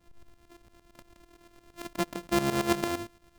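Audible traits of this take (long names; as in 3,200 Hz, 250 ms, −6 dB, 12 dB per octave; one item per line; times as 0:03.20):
a buzz of ramps at a fixed pitch in blocks of 128 samples
tremolo saw up 8.8 Hz, depth 80%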